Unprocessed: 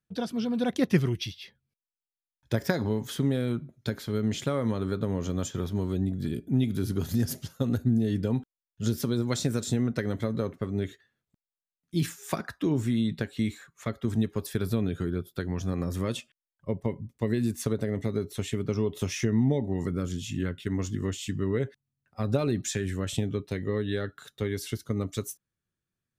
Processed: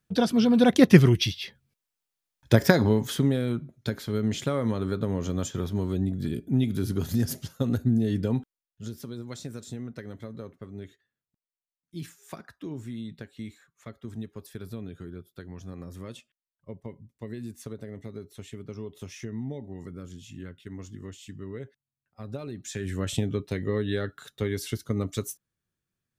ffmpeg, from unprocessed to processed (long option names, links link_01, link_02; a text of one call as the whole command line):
ffmpeg -i in.wav -af "volume=20.5dB,afade=type=out:start_time=2.6:duration=0.8:silence=0.421697,afade=type=out:start_time=8.39:duration=0.5:silence=0.266073,afade=type=in:start_time=22.61:duration=0.41:silence=0.251189" out.wav